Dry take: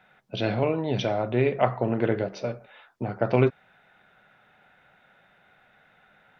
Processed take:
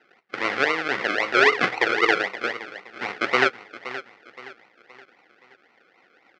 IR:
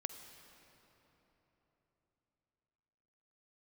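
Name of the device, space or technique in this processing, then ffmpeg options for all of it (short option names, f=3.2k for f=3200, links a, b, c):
circuit-bent sampling toy: -filter_complex "[0:a]aecho=1:1:521|1042|1563|2084:0.2|0.0818|0.0335|0.0138,asettb=1/sr,asplit=3[a][b][c];[a]atrim=end=1.344[d];[b]atrim=start=1.34:end=2.22,asetpts=PTS-STARTPTS,afade=t=in:d=0.004:c=qsin,afade=t=out:st=0.876:d=0.004:c=qsin,aecho=1:1:2.5:0.79,atrim=end_sample=38808[e];[c]atrim=start=2.216[f];[d][e]acrossfade=d=0.004:c1=hsin:c2=qsin[g];[g][f]acrossfade=d=0.004:c1=qsin:c2=hsin,acrusher=samples=37:mix=1:aa=0.000001:lfo=1:lforange=22.2:lforate=3.8,highpass=540,equalizer=f=620:t=q:w=4:g=-8,equalizer=f=950:t=q:w=4:g=-4,equalizer=f=1.4k:t=q:w=4:g=5,equalizer=f=2k:t=q:w=4:g=9,equalizer=f=3.8k:t=q:w=4:g=-4,lowpass=f=4.5k:w=0.5412,lowpass=f=4.5k:w=1.3066,volume=5.5dB"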